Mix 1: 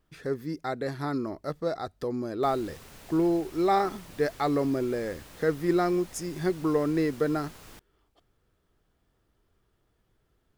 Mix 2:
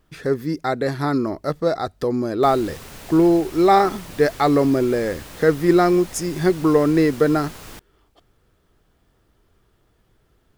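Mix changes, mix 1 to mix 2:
speech +9.5 dB; background +10.0 dB

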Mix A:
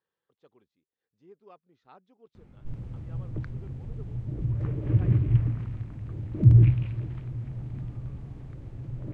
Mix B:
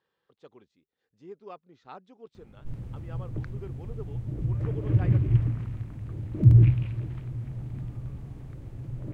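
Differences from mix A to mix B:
speech +8.5 dB; master: remove distance through air 52 m

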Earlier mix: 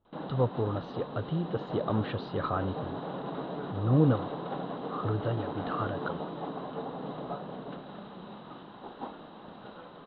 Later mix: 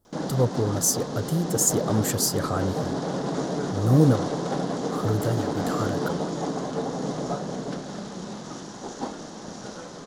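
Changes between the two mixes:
background +4.5 dB; master: remove rippled Chebyshev low-pass 4 kHz, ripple 6 dB

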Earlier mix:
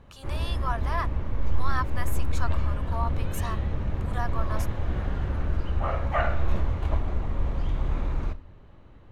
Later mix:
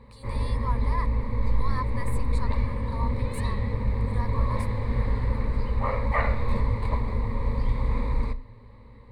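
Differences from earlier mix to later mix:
speech -8.0 dB; master: add rippled EQ curve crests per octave 0.95, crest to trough 16 dB

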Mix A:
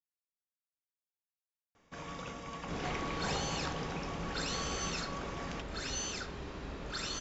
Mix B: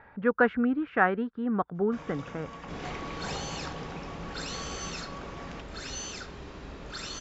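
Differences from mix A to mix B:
speech: unmuted; first sound: add treble shelf 4.4 kHz -8 dB

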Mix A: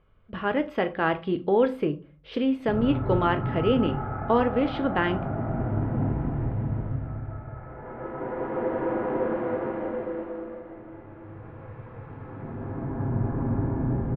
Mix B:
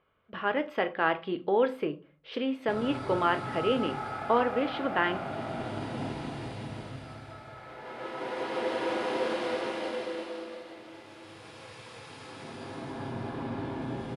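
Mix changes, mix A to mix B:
background: remove low-pass 1.7 kHz 24 dB/octave; master: add high-pass 540 Hz 6 dB/octave

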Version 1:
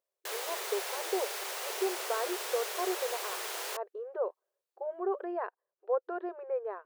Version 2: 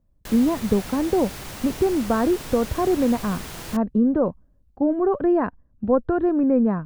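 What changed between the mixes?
speech +9.5 dB; master: remove brick-wall FIR high-pass 360 Hz

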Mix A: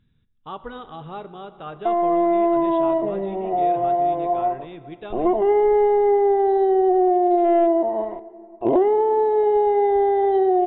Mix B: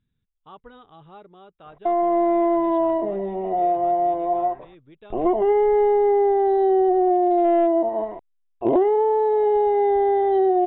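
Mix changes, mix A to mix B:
speech -9.0 dB; reverb: off

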